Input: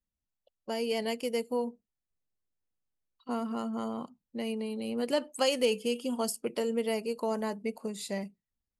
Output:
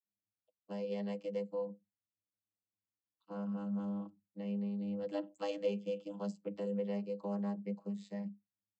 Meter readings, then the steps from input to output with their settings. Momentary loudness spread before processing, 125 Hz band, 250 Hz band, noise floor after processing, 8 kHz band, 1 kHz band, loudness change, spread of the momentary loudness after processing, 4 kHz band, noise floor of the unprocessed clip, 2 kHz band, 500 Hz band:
10 LU, n/a, -4.0 dB, under -85 dBFS, under -25 dB, -11.5 dB, -7.0 dB, 8 LU, -19.0 dB, under -85 dBFS, -15.0 dB, -8.0 dB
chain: vocoder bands 32, saw 101 Hz; comb 6.2 ms, depth 59%; gain -7 dB

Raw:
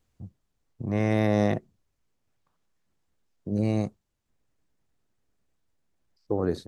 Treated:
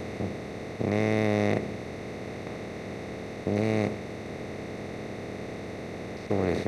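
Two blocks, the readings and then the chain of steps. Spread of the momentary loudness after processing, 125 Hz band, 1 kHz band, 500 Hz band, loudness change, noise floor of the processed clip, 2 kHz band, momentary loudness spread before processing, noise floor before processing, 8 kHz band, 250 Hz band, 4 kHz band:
12 LU, -1.5 dB, +2.0 dB, +2.0 dB, -4.5 dB, -39 dBFS, +5.0 dB, 12 LU, -78 dBFS, n/a, -0.5 dB, +4.5 dB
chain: per-bin compression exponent 0.2; dynamic EQ 2300 Hz, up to +5 dB, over -48 dBFS, Q 3; gain -5 dB

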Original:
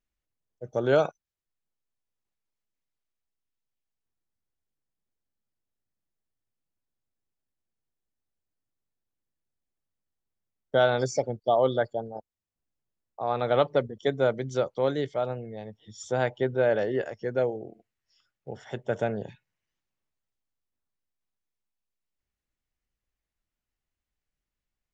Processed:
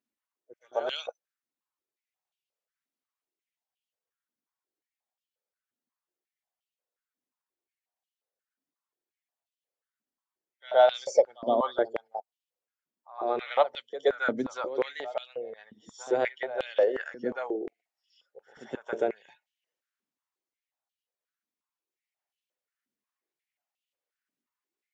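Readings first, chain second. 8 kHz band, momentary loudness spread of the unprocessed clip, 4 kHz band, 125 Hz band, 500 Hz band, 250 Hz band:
n/a, 18 LU, +0.5 dB, under -20 dB, -1.5 dB, -4.0 dB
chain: bin magnitudes rounded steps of 15 dB; pre-echo 0.12 s -14 dB; stepped high-pass 5.6 Hz 250–3000 Hz; gain -3.5 dB

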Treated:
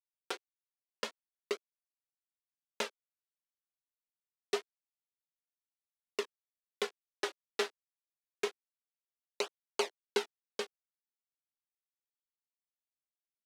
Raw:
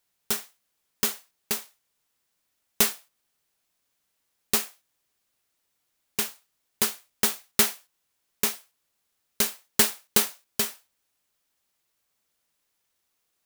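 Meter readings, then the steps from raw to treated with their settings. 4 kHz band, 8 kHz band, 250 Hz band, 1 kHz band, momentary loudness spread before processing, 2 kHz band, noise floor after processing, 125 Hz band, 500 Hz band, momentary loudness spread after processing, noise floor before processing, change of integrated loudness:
-11.5 dB, -21.5 dB, -13.5 dB, -6.5 dB, 10 LU, -9.0 dB, under -85 dBFS, under -20 dB, -1.0 dB, 7 LU, -77 dBFS, -14.0 dB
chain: sample gate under -24.5 dBFS; LPF 3700 Hz 12 dB/oct; upward compressor, threshold -23 dBFS; ladder high-pass 340 Hz, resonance 50%; tape flanging out of phase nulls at 0.26 Hz, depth 5.7 ms; gain +3.5 dB

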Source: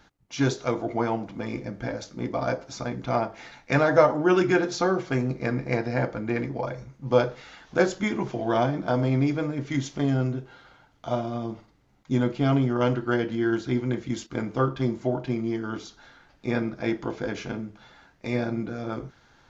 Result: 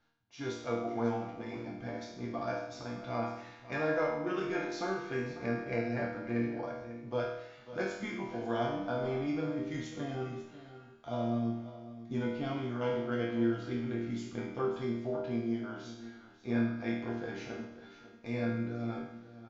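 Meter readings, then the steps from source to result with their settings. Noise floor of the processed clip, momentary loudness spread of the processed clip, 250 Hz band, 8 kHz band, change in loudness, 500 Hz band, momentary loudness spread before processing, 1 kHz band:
-55 dBFS, 12 LU, -8.0 dB, n/a, -9.0 dB, -9.0 dB, 12 LU, -9.5 dB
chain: LPF 5800 Hz 12 dB/oct; AGC gain up to 7.5 dB; resonator bank D#2 major, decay 0.8 s; echo 0.545 s -14.5 dB; gain +1.5 dB

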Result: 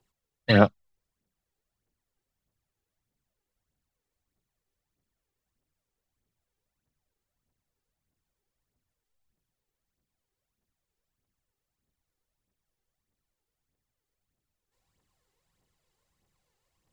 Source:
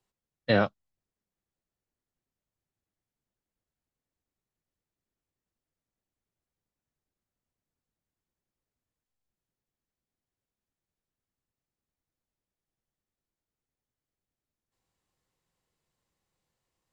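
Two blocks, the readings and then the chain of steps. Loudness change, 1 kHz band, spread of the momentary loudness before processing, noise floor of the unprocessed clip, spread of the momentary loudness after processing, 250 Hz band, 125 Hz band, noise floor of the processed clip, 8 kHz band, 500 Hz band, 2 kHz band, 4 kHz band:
+5.0 dB, +5.0 dB, 11 LU, under -85 dBFS, 10 LU, +7.0 dB, +8.0 dB, under -85 dBFS, n/a, +3.5 dB, +3.5 dB, +5.0 dB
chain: phaser 1.6 Hz, delay 2.6 ms, feedback 56%; gain +3 dB

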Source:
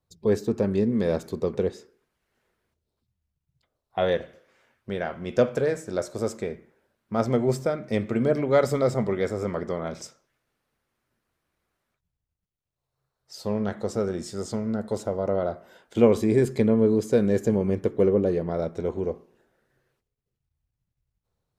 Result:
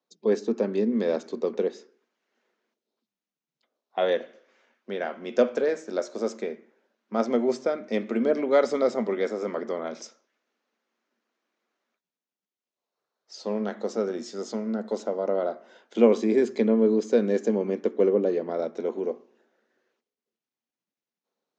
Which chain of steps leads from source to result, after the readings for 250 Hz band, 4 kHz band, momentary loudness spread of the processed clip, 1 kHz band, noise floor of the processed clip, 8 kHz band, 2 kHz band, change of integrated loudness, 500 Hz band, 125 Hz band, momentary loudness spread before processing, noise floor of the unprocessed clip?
-1.5 dB, -0.5 dB, 11 LU, -0.5 dB, under -85 dBFS, -3.5 dB, -0.5 dB, -1.0 dB, 0.0 dB, under -10 dB, 11 LU, -84 dBFS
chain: Chebyshev band-pass 220–6600 Hz, order 4

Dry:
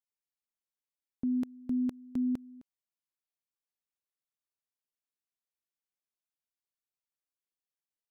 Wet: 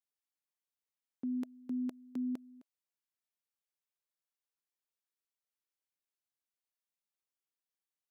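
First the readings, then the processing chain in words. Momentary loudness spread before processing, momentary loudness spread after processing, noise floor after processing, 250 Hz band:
5 LU, 5 LU, under -85 dBFS, -6.0 dB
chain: HPF 260 Hz; notch 640 Hz; gain -2.5 dB

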